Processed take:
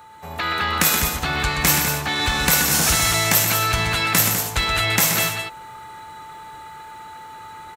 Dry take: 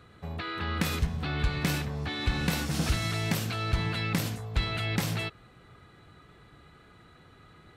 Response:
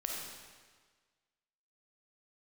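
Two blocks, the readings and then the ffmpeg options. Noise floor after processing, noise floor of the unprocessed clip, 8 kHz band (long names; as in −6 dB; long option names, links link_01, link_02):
−39 dBFS, −56 dBFS, +21.5 dB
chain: -filter_complex "[0:a]acrossover=split=160|660|2600[link_01][link_02][link_03][link_04];[link_03]acontrast=89[link_05];[link_04]aexciter=amount=3:drive=1.2:freq=6000[link_06];[link_01][link_02][link_05][link_06]amix=inputs=4:normalize=0,aecho=1:1:126|200:0.422|0.398,aeval=exprs='val(0)+0.00708*sin(2*PI*880*n/s)':channel_layout=same,dynaudnorm=framelen=200:gausssize=3:maxgain=6.5dB,bass=frequency=250:gain=-5,treble=frequency=4000:gain=9"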